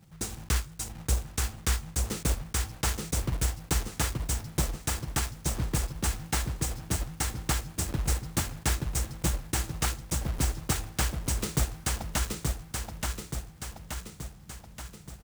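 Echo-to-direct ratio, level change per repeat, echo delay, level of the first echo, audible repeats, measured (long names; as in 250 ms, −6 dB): −1.5 dB, −5.0 dB, 877 ms, −3.0 dB, 6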